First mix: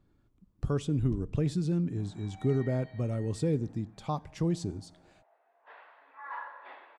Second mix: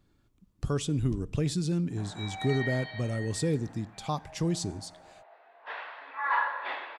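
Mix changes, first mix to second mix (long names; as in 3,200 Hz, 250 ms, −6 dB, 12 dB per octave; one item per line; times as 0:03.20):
background +10.5 dB
master: add high-shelf EQ 2,200 Hz +11 dB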